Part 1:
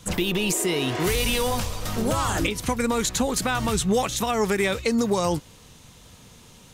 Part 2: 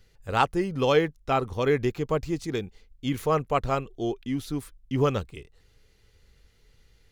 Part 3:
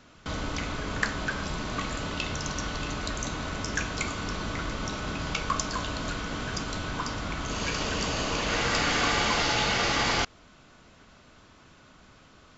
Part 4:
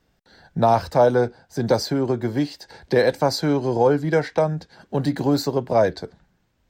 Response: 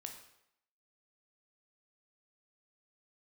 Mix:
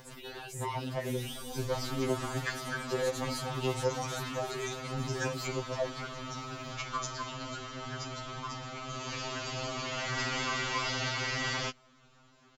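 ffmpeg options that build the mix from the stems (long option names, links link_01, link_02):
-filter_complex "[0:a]alimiter=limit=-18.5dB:level=0:latency=1:release=34,dynaudnorm=framelen=180:gausssize=13:maxgain=6dB,volume=-16.5dB[link_01];[1:a]acompressor=threshold=-31dB:ratio=6,volume=-14.5dB[link_02];[2:a]adelay=1450,volume=-5dB[link_03];[3:a]acompressor=mode=upward:threshold=-19dB:ratio=2.5,asoftclip=type=tanh:threshold=-15dB,volume=-11dB[link_04];[link_01][link_02][link_03][link_04]amix=inputs=4:normalize=0,afftfilt=real='re*2.45*eq(mod(b,6),0)':imag='im*2.45*eq(mod(b,6),0)':win_size=2048:overlap=0.75"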